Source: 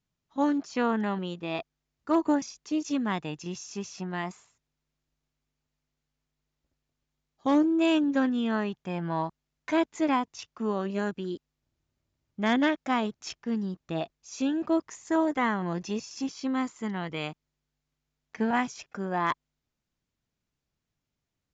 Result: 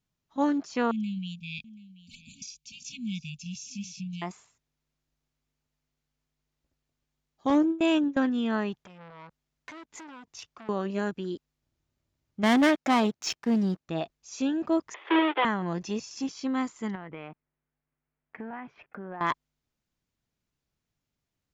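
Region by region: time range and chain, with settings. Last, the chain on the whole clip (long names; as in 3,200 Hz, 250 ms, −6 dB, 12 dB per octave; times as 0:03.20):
0:00.91–0:04.22: linear-phase brick-wall band-stop 240–2,200 Hz + single-tap delay 732 ms −17.5 dB
0:07.50–0:08.22: notch filter 4,500 Hz, Q 9.8 + noise gate with hold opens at −18 dBFS, closes at −22 dBFS
0:08.86–0:10.69: downward compressor, threshold −37 dBFS + saturating transformer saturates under 2,000 Hz
0:12.43–0:13.88: notch filter 3,400 Hz, Q 27 + leveller curve on the samples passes 2 + high-pass filter 120 Hz 6 dB per octave
0:14.94–0:15.45: each half-wave held at its own peak + Chebyshev band-pass filter 330–3,400 Hz, order 5 + multiband upward and downward compressor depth 40%
0:16.95–0:19.21: low-pass filter 2,300 Hz 24 dB per octave + low-shelf EQ 130 Hz −7 dB + downward compressor 5 to 1, threshold −36 dBFS
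whole clip: no processing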